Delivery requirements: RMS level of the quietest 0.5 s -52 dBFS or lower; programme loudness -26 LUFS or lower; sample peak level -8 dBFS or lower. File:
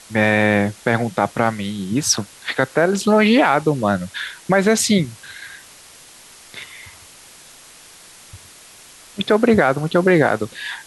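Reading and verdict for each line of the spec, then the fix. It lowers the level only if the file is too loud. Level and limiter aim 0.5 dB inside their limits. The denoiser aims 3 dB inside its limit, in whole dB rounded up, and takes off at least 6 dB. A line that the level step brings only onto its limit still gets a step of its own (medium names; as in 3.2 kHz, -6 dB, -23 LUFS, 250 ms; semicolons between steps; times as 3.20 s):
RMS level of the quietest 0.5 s -44 dBFS: fail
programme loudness -18.0 LUFS: fail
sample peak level -3.0 dBFS: fail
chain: trim -8.5 dB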